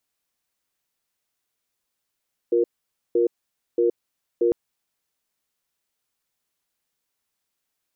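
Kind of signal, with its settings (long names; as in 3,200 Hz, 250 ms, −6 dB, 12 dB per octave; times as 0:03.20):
tone pair in a cadence 353 Hz, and 471 Hz, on 0.12 s, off 0.51 s, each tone −19 dBFS 2.00 s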